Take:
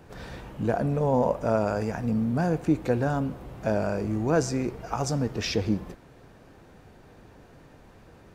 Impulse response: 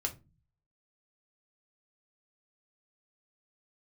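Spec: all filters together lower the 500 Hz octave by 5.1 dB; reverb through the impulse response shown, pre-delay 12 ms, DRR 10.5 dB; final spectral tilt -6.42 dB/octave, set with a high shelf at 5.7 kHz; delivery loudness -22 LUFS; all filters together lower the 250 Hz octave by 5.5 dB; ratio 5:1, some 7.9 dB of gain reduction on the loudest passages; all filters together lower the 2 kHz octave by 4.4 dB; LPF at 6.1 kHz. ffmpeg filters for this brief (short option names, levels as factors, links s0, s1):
-filter_complex "[0:a]lowpass=6100,equalizer=f=250:t=o:g=-6,equalizer=f=500:t=o:g=-4.5,equalizer=f=2000:t=o:g=-5,highshelf=f=5700:g=-8.5,acompressor=threshold=0.0251:ratio=5,asplit=2[s0][s1];[1:a]atrim=start_sample=2205,adelay=12[s2];[s1][s2]afir=irnorm=-1:irlink=0,volume=0.237[s3];[s0][s3]amix=inputs=2:normalize=0,volume=5.31"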